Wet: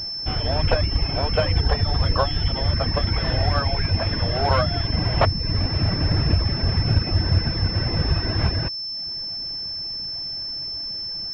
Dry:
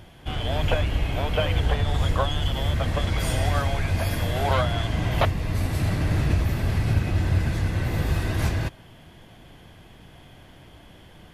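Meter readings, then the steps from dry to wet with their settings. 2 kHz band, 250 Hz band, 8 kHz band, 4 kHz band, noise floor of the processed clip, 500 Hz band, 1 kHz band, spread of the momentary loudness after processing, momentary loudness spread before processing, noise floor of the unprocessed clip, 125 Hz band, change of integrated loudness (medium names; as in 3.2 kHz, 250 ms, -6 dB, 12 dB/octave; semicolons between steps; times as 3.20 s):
+0.5 dB, +2.0 dB, under -15 dB, +10.0 dB, -30 dBFS, +2.5 dB, +2.5 dB, 6 LU, 3 LU, -49 dBFS, +2.0 dB, +2.5 dB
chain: reverb removal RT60 0.79 s; class-D stage that switches slowly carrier 5.3 kHz; trim +4 dB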